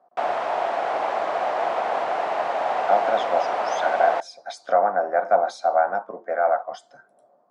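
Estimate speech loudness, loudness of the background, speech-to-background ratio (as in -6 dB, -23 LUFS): -23.0 LUFS, -25.0 LUFS, 2.0 dB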